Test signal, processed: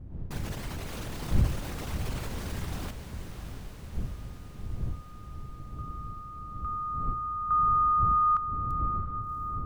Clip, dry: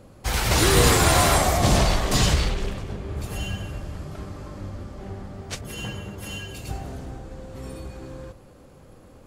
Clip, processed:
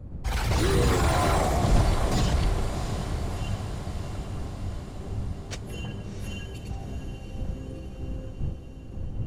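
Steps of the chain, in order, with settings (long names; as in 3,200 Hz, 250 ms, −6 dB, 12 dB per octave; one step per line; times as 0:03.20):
spectral envelope exaggerated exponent 1.5
wind on the microphone 95 Hz −32 dBFS
in parallel at −1 dB: brickwall limiter −16 dBFS
on the sum: feedback delay with all-pass diffusion 694 ms, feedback 64%, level −9 dB
slew-rate limiting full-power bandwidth 350 Hz
level −8 dB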